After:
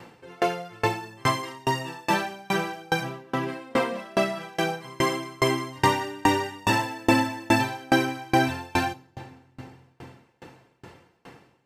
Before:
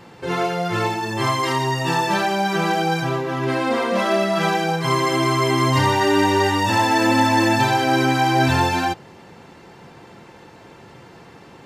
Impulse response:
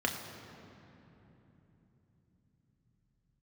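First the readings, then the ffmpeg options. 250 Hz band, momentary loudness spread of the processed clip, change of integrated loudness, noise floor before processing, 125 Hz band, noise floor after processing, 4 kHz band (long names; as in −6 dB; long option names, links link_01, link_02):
−6.5 dB, 7 LU, −7.0 dB, −45 dBFS, −9.5 dB, −63 dBFS, −7.5 dB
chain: -filter_complex "[0:a]asplit=2[link_01][link_02];[link_02]highshelf=frequency=3700:gain=11.5[link_03];[1:a]atrim=start_sample=2205,highshelf=frequency=8700:gain=10[link_04];[link_03][link_04]afir=irnorm=-1:irlink=0,volume=-19dB[link_05];[link_01][link_05]amix=inputs=2:normalize=0,aeval=exprs='val(0)*pow(10,-31*if(lt(mod(2.4*n/s,1),2*abs(2.4)/1000),1-mod(2.4*n/s,1)/(2*abs(2.4)/1000),(mod(2.4*n/s,1)-2*abs(2.4)/1000)/(1-2*abs(2.4)/1000))/20)':channel_layout=same"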